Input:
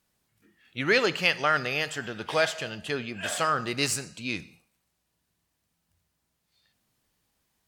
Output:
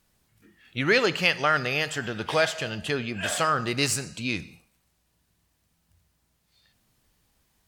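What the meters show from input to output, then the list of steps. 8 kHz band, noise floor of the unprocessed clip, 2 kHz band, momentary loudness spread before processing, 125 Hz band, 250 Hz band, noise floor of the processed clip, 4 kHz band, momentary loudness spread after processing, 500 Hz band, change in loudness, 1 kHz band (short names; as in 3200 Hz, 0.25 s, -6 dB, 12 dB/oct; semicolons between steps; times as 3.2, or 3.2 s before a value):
+2.0 dB, -78 dBFS, +1.5 dB, 11 LU, +5.0 dB, +3.0 dB, -72 dBFS, +2.0 dB, 9 LU, +2.0 dB, +1.5 dB, +1.5 dB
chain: low shelf 84 Hz +9.5 dB; in parallel at -2.5 dB: compressor, threshold -34 dBFS, peak gain reduction 15.5 dB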